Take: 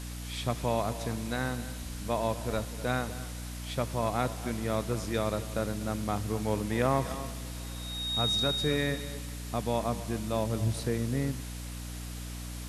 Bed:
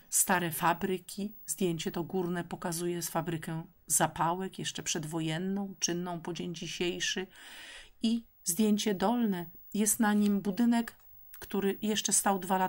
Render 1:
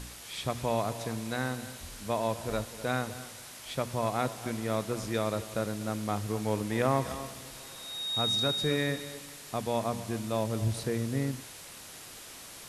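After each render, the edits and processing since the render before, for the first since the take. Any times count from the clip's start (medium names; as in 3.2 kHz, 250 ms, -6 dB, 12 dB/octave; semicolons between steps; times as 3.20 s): de-hum 60 Hz, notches 5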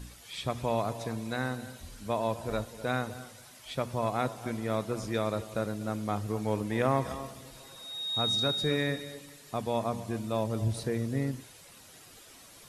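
noise reduction 9 dB, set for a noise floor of -47 dBFS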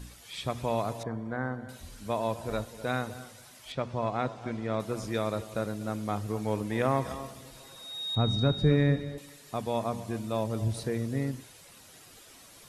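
1.03–1.69 s: Savitzky-Golay filter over 41 samples; 3.72–4.80 s: distance through air 110 m; 8.15–9.18 s: RIAA curve playback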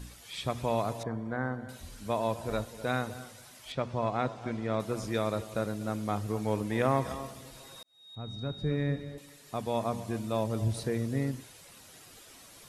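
7.83–9.90 s: fade in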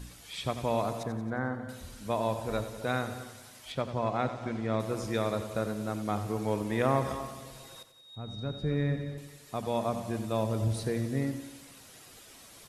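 feedback delay 90 ms, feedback 56%, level -11.5 dB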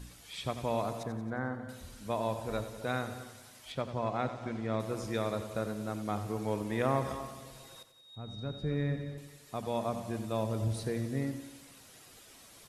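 trim -3 dB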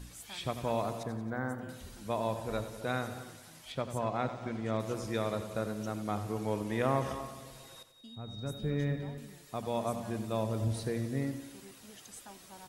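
add bed -23.5 dB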